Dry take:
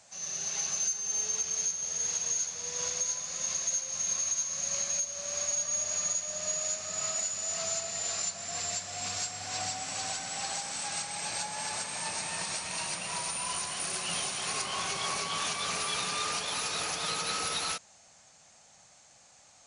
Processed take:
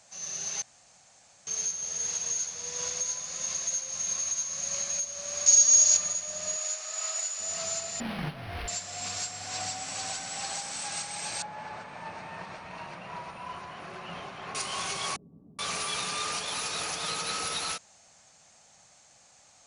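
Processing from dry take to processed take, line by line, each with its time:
0.62–1.47 room tone
5.46–5.97 bell 5800 Hz +14 dB 1.4 oct
6.56–7.4 HPF 620 Hz
8–8.68 decimation joined by straight lines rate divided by 6×
11.42–14.55 LPF 1700 Hz
15.16–15.59 ladder low-pass 310 Hz, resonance 45%

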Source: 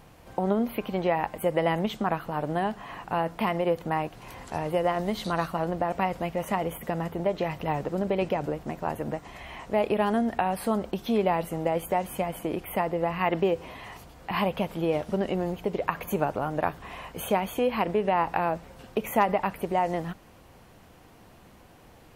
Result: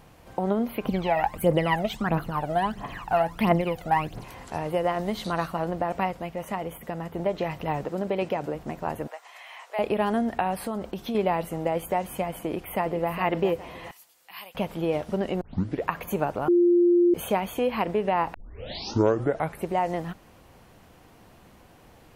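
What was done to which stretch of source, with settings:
0.85–4.24 phaser 1.5 Hz, delay 1.6 ms, feedback 73%
6.11–7.14 gain -3.5 dB
7.85–8.55 HPF 150 Hz 6 dB/oct
9.07–9.79 Bessel high-pass 910 Hz, order 6
10.59–11.15 compressor, threshold -26 dBFS
12.42–13.11 echo throw 0.41 s, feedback 35%, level -9.5 dB
13.91–14.55 differentiator
15.41 tape start 0.43 s
16.48–17.14 bleep 349 Hz -15.5 dBFS
18.34 tape start 1.36 s

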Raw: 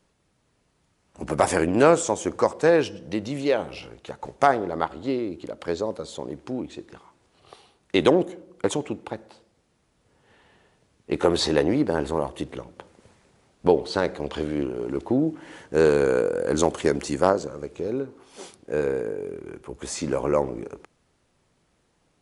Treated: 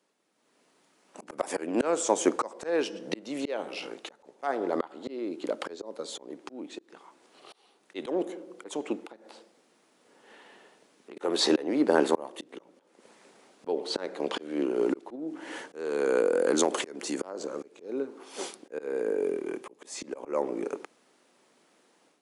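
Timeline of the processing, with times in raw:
9.06–11.17 compressor, threshold -49 dBFS
15.15–17.89 compressor 3:1, threshold -25 dBFS
19.29–20.18 notch 1400 Hz, Q 7.4
whole clip: HPF 240 Hz 24 dB/oct; auto swell 0.469 s; AGC gain up to 10 dB; gain -5 dB

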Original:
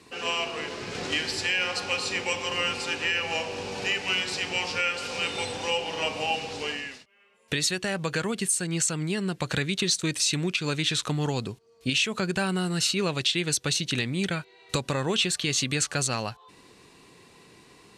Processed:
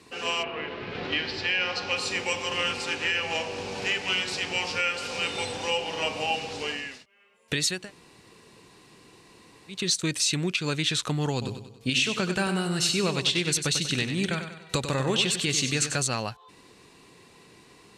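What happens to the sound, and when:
0.42–1.95 LPF 2800 Hz -> 6000 Hz 24 dB/oct
2.49–4.5 Doppler distortion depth 0.13 ms
7.8–9.78 room tone, crossfade 0.24 s
11.32–16 feedback echo 96 ms, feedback 47%, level -8.5 dB

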